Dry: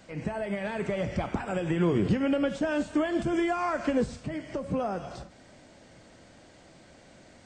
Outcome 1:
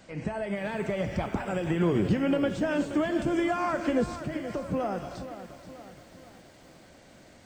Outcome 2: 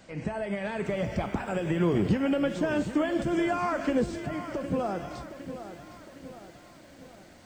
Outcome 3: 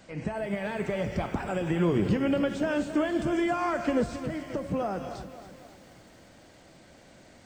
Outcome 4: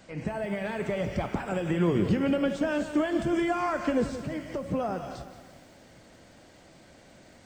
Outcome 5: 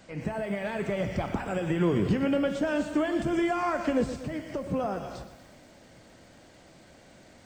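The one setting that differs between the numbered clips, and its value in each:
bit-crushed delay, time: 476 ms, 761 ms, 268 ms, 175 ms, 119 ms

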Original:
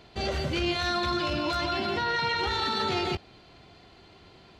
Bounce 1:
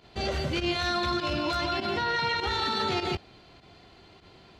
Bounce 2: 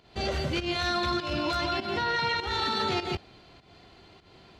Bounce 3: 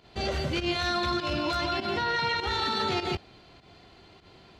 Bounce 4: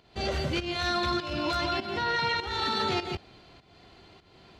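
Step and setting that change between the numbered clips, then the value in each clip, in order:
volume shaper, release: 67 ms, 203 ms, 107 ms, 351 ms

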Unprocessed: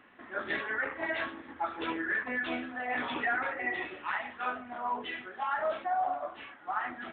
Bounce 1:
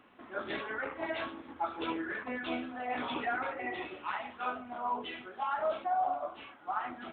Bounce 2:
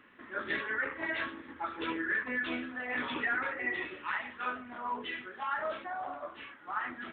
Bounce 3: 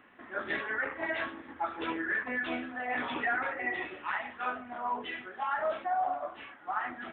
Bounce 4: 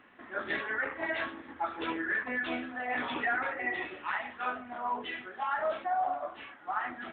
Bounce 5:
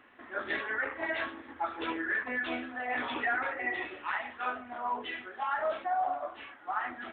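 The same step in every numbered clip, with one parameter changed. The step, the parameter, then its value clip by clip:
peaking EQ, frequency: 1.8 kHz, 730 Hz, 5 kHz, 15 kHz, 170 Hz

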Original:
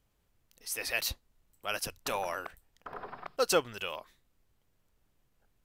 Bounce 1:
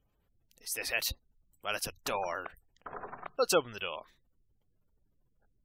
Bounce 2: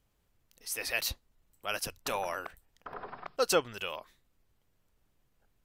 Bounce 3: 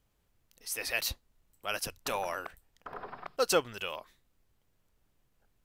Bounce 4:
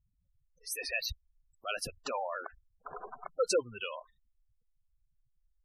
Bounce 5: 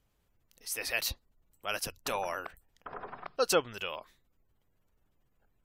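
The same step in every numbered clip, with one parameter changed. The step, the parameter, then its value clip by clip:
spectral gate, under each frame's peak: -25 dB, -45 dB, -60 dB, -10 dB, -35 dB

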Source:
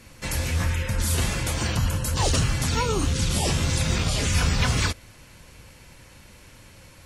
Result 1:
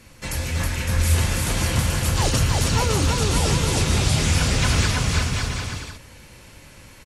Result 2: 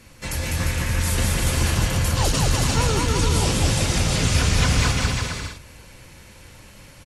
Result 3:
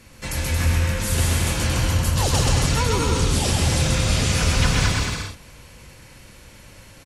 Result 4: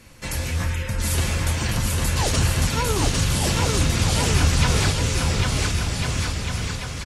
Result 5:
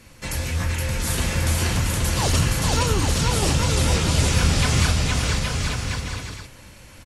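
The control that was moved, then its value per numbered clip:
bouncing-ball echo, first gap: 320 ms, 200 ms, 130 ms, 800 ms, 470 ms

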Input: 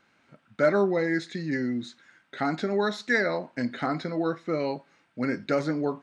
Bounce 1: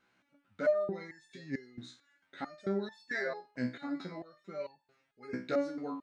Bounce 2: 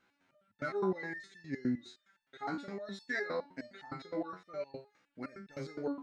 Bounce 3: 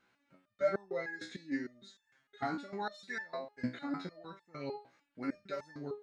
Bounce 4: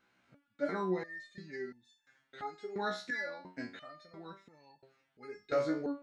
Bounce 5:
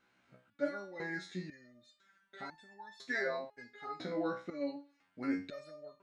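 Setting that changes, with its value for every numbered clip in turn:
resonator arpeggio, rate: 4.5 Hz, 9.7 Hz, 6.6 Hz, 2.9 Hz, 2 Hz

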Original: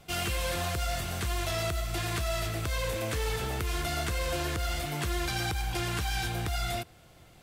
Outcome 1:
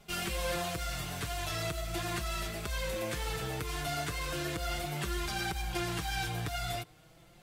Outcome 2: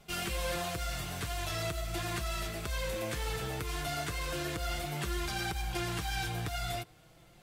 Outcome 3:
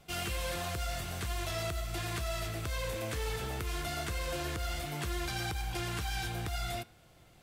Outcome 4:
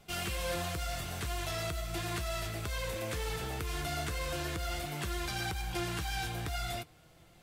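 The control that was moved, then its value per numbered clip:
flange, regen: +1%, -23%, -90%, +69%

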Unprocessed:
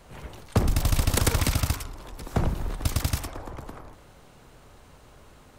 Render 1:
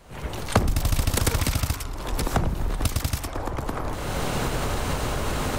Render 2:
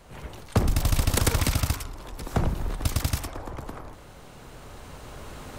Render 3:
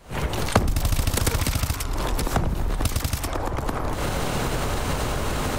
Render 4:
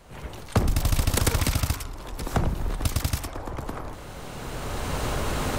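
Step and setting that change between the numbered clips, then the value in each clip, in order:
recorder AGC, rising by: 33 dB/s, 5.1 dB/s, 90 dB/s, 13 dB/s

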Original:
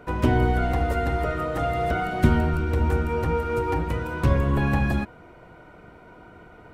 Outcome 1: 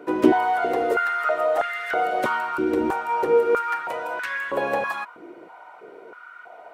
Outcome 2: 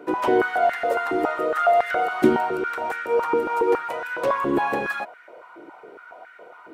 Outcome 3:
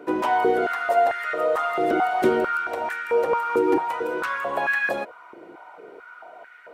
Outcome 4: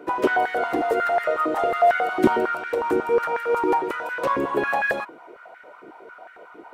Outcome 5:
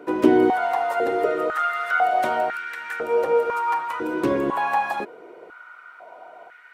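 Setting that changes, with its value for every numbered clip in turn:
step-sequenced high-pass, rate: 3.1 Hz, 7.2 Hz, 4.5 Hz, 11 Hz, 2 Hz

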